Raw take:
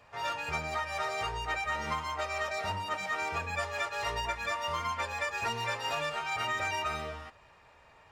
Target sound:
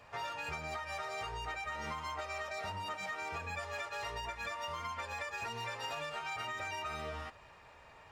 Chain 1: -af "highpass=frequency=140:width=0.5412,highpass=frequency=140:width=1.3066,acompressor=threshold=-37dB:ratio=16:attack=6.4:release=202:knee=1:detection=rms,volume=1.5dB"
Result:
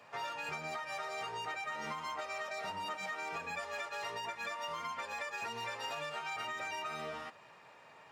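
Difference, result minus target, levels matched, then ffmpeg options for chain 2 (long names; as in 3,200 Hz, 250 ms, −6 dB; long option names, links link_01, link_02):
125 Hz band −8.0 dB
-af "acompressor=threshold=-37dB:ratio=16:attack=6.4:release=202:knee=1:detection=rms,volume=1.5dB"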